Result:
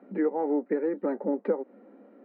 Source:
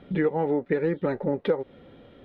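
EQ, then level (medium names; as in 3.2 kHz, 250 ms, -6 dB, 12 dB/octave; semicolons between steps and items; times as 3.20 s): boxcar filter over 13 samples; rippled Chebyshev high-pass 200 Hz, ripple 3 dB; bass shelf 470 Hz +4.5 dB; -2.5 dB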